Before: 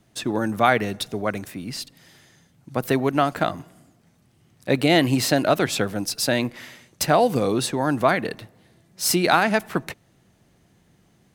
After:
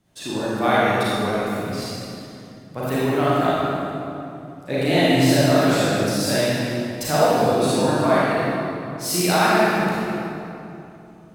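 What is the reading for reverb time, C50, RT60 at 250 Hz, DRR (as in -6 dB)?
2.8 s, -6.0 dB, 3.3 s, -9.5 dB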